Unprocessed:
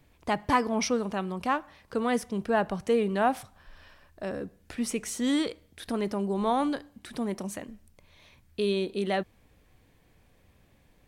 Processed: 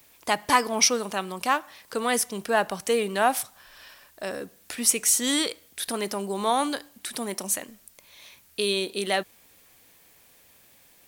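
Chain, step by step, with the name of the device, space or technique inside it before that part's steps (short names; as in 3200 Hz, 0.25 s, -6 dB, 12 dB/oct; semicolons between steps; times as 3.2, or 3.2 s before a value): turntable without a phono preamp (RIAA curve recording; white noise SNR 36 dB); gain +4 dB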